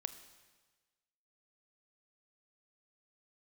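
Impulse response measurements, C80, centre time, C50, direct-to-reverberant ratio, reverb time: 13.5 dB, 11 ms, 12.0 dB, 10.5 dB, 1.3 s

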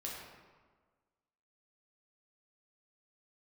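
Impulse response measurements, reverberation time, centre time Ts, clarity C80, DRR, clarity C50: 1.5 s, 78 ms, 2.5 dB, -4.5 dB, 0.5 dB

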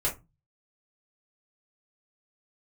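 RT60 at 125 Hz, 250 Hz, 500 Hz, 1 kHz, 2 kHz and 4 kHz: 0.60 s, 0.40 s, 0.25 s, 0.25 s, 0.20 s, 0.15 s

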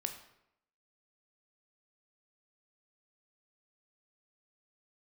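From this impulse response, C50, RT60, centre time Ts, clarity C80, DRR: 9.0 dB, 0.80 s, 16 ms, 11.5 dB, 5.5 dB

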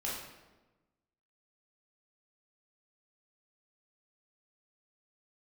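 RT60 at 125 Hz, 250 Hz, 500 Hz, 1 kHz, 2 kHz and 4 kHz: 1.5 s, 1.4 s, 1.2 s, 1.1 s, 0.95 s, 0.80 s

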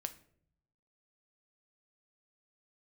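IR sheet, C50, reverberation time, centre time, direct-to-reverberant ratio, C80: 15.5 dB, 0.60 s, 5 ms, 8.5 dB, 19.5 dB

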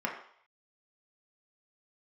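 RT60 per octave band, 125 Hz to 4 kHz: 0.30 s, 0.40 s, 0.60 s, 0.65 s, 0.60 s, 0.65 s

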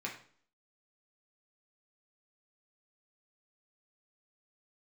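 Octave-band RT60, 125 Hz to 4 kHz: 0.50 s, 0.60 s, 0.50 s, 0.50 s, 0.45 s, 0.45 s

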